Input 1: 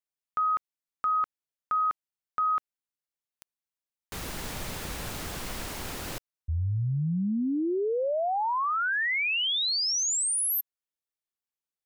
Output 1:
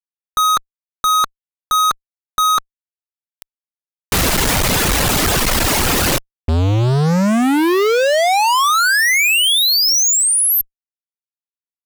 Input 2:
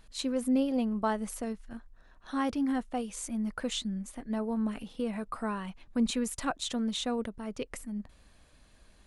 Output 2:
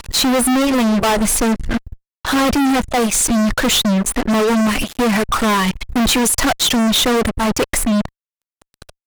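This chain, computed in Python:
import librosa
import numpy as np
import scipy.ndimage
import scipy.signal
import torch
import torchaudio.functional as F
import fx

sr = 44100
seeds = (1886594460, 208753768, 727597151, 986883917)

y = fx.dereverb_blind(x, sr, rt60_s=1.6)
y = fx.fuzz(y, sr, gain_db=51.0, gate_db=-52.0)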